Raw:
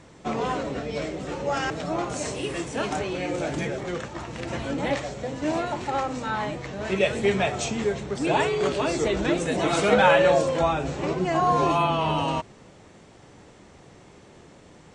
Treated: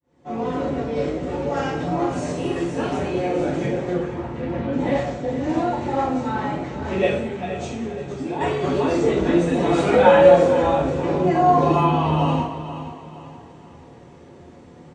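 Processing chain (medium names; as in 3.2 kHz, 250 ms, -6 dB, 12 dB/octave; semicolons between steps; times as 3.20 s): fade-in on the opening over 0.66 s; high-pass 64 Hz; tilt EQ -2.5 dB/octave; de-hum 105.8 Hz, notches 28; 3.93–4.73 s: distance through air 240 m; 7.12–8.41 s: compression 5:1, threshold -28 dBFS, peak gain reduction 12.5 dB; feedback delay 473 ms, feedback 39%, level -12.5 dB; reverberation, pre-delay 3 ms, DRR -9 dB; trim -7.5 dB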